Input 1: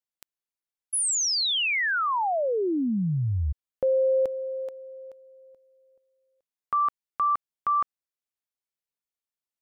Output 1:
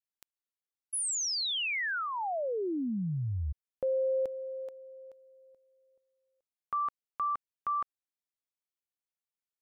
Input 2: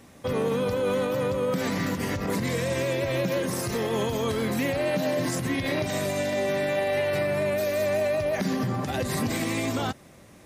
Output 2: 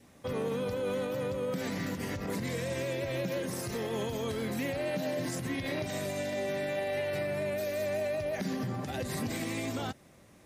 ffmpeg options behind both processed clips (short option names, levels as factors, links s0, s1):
-af "adynamicequalizer=threshold=0.00794:dfrequency=1100:dqfactor=3.1:tfrequency=1100:tqfactor=3.1:attack=5:release=100:ratio=0.375:range=2.5:mode=cutabove:tftype=bell,volume=0.447"